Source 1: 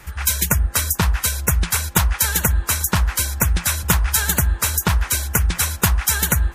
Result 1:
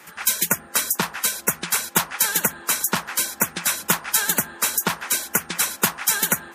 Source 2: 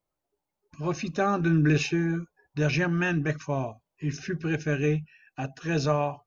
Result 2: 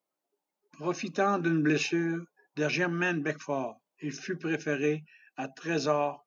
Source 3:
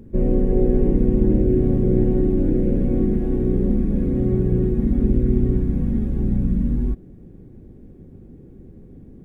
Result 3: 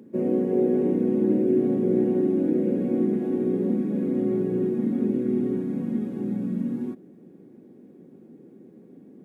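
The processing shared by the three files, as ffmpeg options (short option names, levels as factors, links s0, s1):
-af "highpass=f=200:w=0.5412,highpass=f=200:w=1.3066,volume=0.891"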